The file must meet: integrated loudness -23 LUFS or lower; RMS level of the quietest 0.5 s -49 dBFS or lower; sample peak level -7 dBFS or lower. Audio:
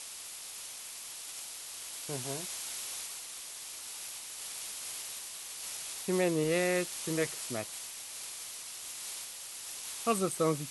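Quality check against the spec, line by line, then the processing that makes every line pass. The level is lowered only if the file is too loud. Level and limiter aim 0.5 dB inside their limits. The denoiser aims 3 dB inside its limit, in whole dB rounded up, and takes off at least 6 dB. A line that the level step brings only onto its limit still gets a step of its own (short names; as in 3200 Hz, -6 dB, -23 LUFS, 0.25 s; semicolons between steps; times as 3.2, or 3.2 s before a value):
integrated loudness -36.0 LUFS: OK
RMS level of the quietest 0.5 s -45 dBFS: fail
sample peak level -16.5 dBFS: OK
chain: denoiser 7 dB, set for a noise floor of -45 dBFS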